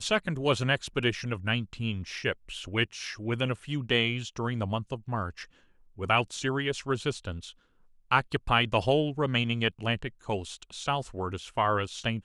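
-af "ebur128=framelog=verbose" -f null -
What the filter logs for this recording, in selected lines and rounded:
Integrated loudness:
  I:         -29.5 LUFS
  Threshold: -39.8 LUFS
Loudness range:
  LRA:         3.3 LU
  Threshold: -49.9 LUFS
  LRA low:   -31.6 LUFS
  LRA high:  -28.4 LUFS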